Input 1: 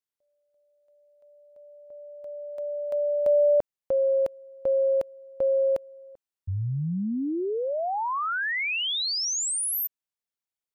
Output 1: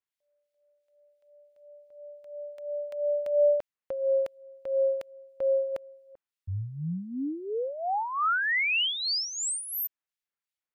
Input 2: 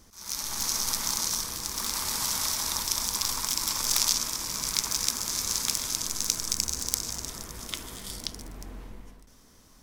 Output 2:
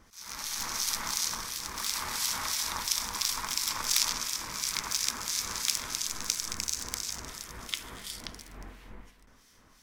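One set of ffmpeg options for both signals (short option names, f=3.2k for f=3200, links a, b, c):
-filter_complex "[0:a]equalizer=f=1.9k:w=0.59:g=8.5,acrossover=split=2100[a][b];[a]aeval=exprs='val(0)*(1-0.7/2+0.7/2*cos(2*PI*2.9*n/s))':c=same[c];[b]aeval=exprs='val(0)*(1-0.7/2-0.7/2*cos(2*PI*2.9*n/s))':c=same[d];[c][d]amix=inputs=2:normalize=0,volume=-2.5dB"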